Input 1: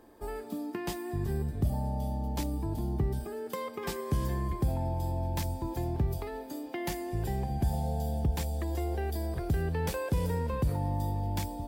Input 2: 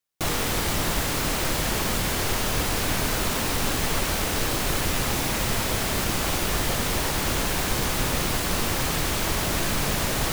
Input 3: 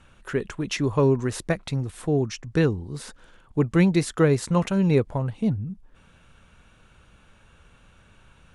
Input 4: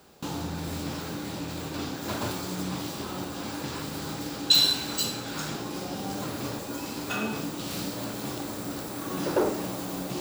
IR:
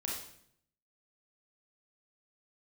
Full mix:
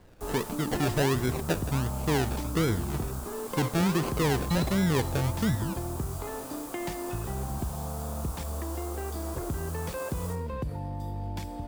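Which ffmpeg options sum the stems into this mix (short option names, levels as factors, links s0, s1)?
-filter_complex "[0:a]aeval=exprs='sgn(val(0))*max(abs(val(0))-0.00178,0)':c=same,volume=1.41,asplit=2[s0][s1];[s1]volume=0.0708[s2];[1:a]firequalizer=gain_entry='entry(1200,0);entry(1900,-21);entry(7800,-1)':delay=0.05:min_phase=1,flanger=delay=19:depth=6.3:speed=1.2,highpass=660,volume=0.237,asplit=2[s3][s4];[s4]volume=0.501[s5];[2:a]acrusher=samples=34:mix=1:aa=0.000001:lfo=1:lforange=20.4:lforate=1.4,volume=0.794,asplit=2[s6][s7];[s7]volume=0.106[s8];[3:a]volume=0.178[s9];[s0][s9]amix=inputs=2:normalize=0,highshelf=f=9200:g=-11,acompressor=threshold=0.0282:ratio=6,volume=1[s10];[4:a]atrim=start_sample=2205[s11];[s2][s5][s8]amix=inputs=3:normalize=0[s12];[s12][s11]afir=irnorm=-1:irlink=0[s13];[s3][s6][s10][s13]amix=inputs=4:normalize=0,alimiter=limit=0.126:level=0:latency=1:release=28"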